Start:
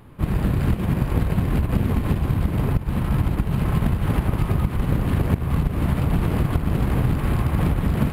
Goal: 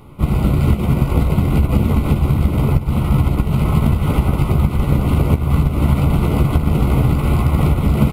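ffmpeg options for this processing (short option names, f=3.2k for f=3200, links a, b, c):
-filter_complex "[0:a]asuperstop=centerf=1700:order=12:qfactor=3.9,asplit=2[a][b];[b]adelay=14,volume=-7dB[c];[a][c]amix=inputs=2:normalize=0,volume=5dB"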